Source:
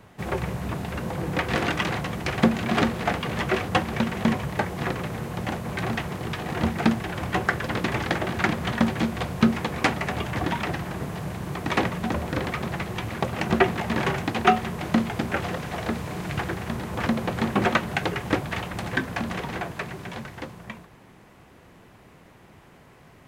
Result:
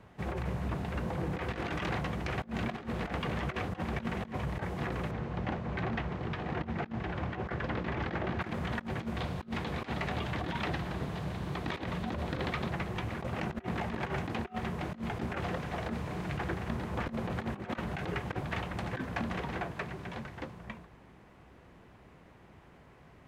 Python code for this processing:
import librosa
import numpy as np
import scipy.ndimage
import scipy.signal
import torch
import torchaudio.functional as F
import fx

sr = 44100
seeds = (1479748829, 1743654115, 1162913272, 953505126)

y = fx.air_absorb(x, sr, metres=120.0, at=(5.11, 8.41))
y = fx.peak_eq(y, sr, hz=3800.0, db=6.5, octaves=0.77, at=(9.17, 12.7))
y = fx.lowpass(y, sr, hz=3300.0, slope=6)
y = fx.peak_eq(y, sr, hz=60.0, db=10.0, octaves=0.3)
y = fx.over_compress(y, sr, threshold_db=-27.0, ratio=-0.5)
y = F.gain(torch.from_numpy(y), -7.0).numpy()